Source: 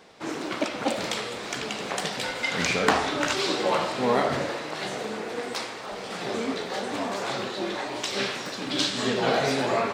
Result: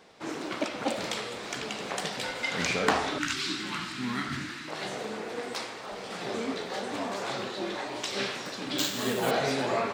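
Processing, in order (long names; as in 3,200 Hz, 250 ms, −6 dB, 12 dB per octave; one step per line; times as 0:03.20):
0:03.18–0:04.68: drawn EQ curve 310 Hz 0 dB, 520 Hz −29 dB, 1,400 Hz 0 dB
0:08.78–0:09.31: bad sample-rate conversion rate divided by 4×, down none, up hold
level −3.5 dB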